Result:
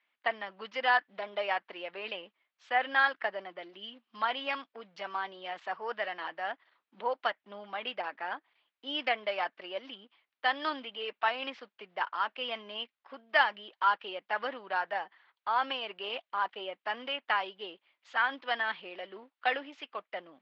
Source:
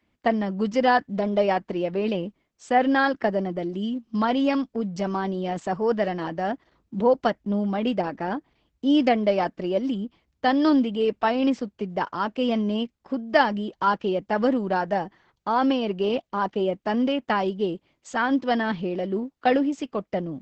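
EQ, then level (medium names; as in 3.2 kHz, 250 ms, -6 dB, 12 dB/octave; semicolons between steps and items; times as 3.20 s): high-pass 1.2 kHz 12 dB/octave; low-pass 3.7 kHz 24 dB/octave; 0.0 dB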